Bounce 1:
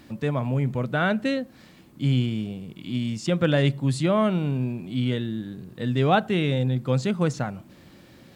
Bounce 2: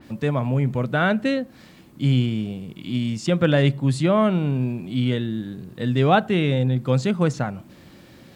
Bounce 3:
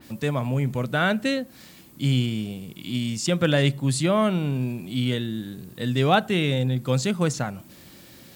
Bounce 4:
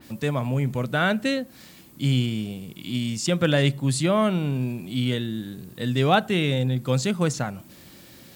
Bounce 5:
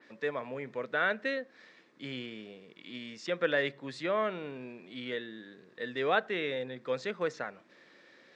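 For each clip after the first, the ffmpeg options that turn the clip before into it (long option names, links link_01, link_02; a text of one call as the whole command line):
ffmpeg -i in.wav -af "adynamicequalizer=threshold=0.00891:dfrequency=3100:dqfactor=0.7:tfrequency=3100:tqfactor=0.7:attack=5:release=100:ratio=0.375:range=2:mode=cutabove:tftype=highshelf,volume=3dB" out.wav
ffmpeg -i in.wav -af "crystalizer=i=3:c=0,volume=-3dB" out.wav
ffmpeg -i in.wav -af anull out.wav
ffmpeg -i in.wav -af "highpass=440,equalizer=frequency=460:width_type=q:width=4:gain=6,equalizer=frequency=790:width_type=q:width=4:gain=-5,equalizer=frequency=1800:width_type=q:width=4:gain=7,equalizer=frequency=3000:width_type=q:width=4:gain=-7,equalizer=frequency=4400:width_type=q:width=4:gain=-6,lowpass=frequency=4500:width=0.5412,lowpass=frequency=4500:width=1.3066,volume=-6.5dB" out.wav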